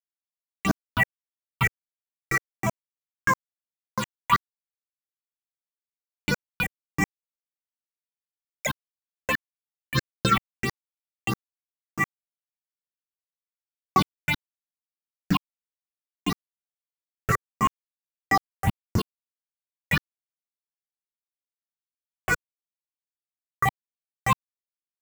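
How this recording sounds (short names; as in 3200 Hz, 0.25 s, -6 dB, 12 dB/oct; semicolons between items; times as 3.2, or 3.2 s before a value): a quantiser's noise floor 6-bit, dither none; phasing stages 6, 1.6 Hz, lowest notch 220–4100 Hz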